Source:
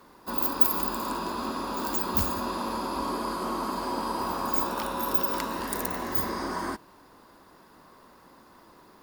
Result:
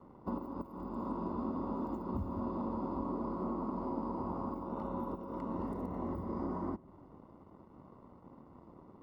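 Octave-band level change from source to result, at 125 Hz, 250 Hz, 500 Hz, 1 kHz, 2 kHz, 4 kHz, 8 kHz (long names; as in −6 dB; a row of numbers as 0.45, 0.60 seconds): −1.5 dB, −2.5 dB, −6.5 dB, −11.5 dB, −24.5 dB, below −30 dB, below −35 dB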